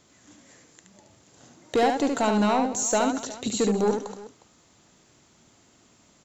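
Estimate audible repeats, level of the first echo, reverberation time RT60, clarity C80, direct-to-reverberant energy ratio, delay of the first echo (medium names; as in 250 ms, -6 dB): 3, -5.0 dB, no reverb, no reverb, no reverb, 73 ms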